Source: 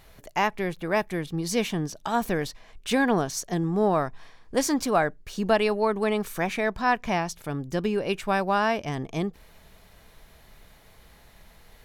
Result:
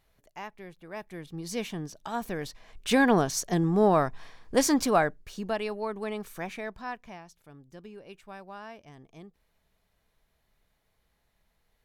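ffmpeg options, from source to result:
-af "volume=1dB,afade=t=in:st=0.9:d=0.62:silence=0.354813,afade=t=in:st=2.36:d=0.62:silence=0.375837,afade=t=out:st=4.81:d=0.66:silence=0.316228,afade=t=out:st=6.46:d=0.72:silence=0.281838"

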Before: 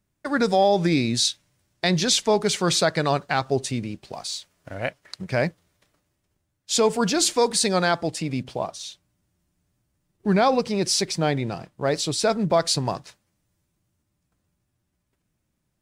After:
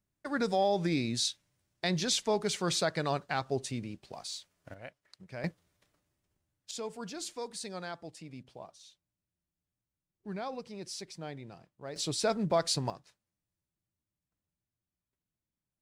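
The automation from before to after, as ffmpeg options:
-af "asetnsamples=n=441:p=0,asendcmd='4.74 volume volume -19dB;5.44 volume volume -7dB;6.71 volume volume -19.5dB;11.96 volume volume -8dB;12.9 volume volume -17.5dB',volume=-9.5dB"

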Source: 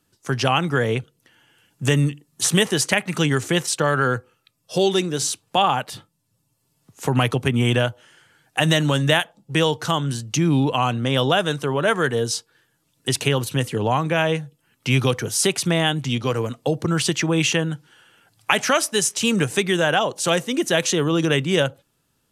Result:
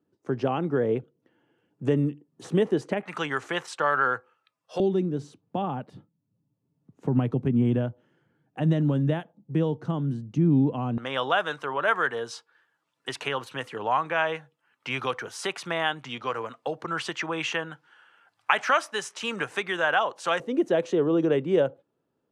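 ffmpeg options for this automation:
-af "asetnsamples=n=441:p=0,asendcmd='3.03 bandpass f 1100;4.8 bandpass f 220;10.98 bandpass f 1200;20.4 bandpass f 440',bandpass=f=350:t=q:w=1.2:csg=0"

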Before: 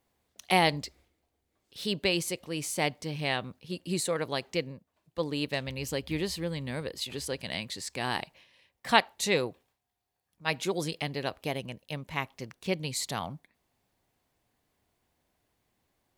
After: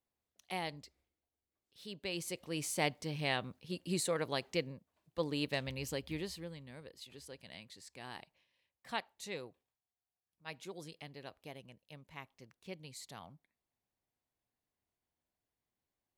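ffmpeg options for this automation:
-af "volume=-4.5dB,afade=t=in:st=2.01:d=0.53:silence=0.266073,afade=t=out:st=5.66:d=0.99:silence=0.251189"

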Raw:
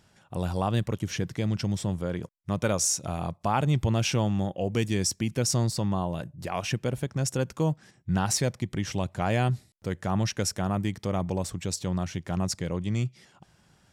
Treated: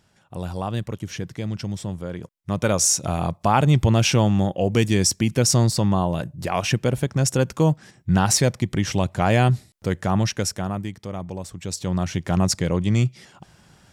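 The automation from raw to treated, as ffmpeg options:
-af "volume=19dB,afade=t=in:st=2.18:d=0.8:silence=0.398107,afade=t=out:st=9.92:d=1.02:silence=0.298538,afade=t=in:st=11.53:d=0.73:silence=0.266073"

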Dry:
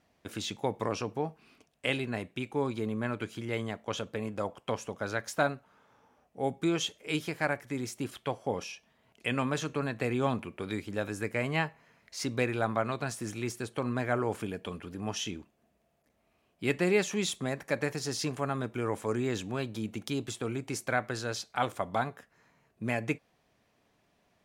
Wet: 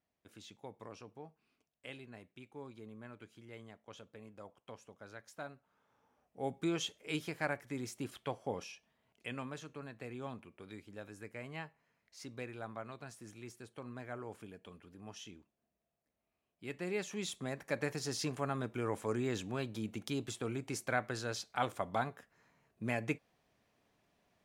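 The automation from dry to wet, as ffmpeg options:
-af "volume=4.5dB,afade=t=in:st=5.46:d=1.16:silence=0.251189,afade=t=out:st=8.39:d=1.25:silence=0.354813,afade=t=in:st=16.67:d=1.3:silence=0.298538"

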